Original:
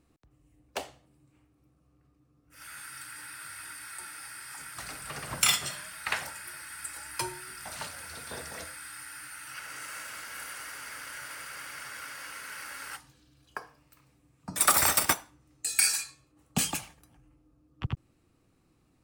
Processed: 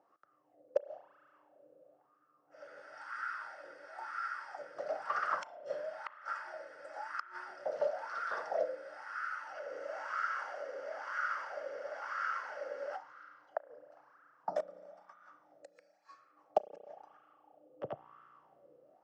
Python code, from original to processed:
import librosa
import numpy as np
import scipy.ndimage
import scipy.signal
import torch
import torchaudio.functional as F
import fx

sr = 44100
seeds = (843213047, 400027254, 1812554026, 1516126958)

y = fx.gate_flip(x, sr, shuts_db=-20.0, range_db=-36)
y = fx.cabinet(y, sr, low_hz=210.0, low_slope=12, high_hz=6200.0, hz=(250.0, 580.0, 1000.0, 2400.0, 3800.0, 5500.0), db=(-5, 8, -8, -9, -8, 6))
y = fx.rev_spring(y, sr, rt60_s=3.4, pass_ms=(33,), chirp_ms=60, drr_db=15.0)
y = fx.wah_lfo(y, sr, hz=1.0, low_hz=500.0, high_hz=1300.0, q=6.6)
y = y * librosa.db_to_amplitude(17.0)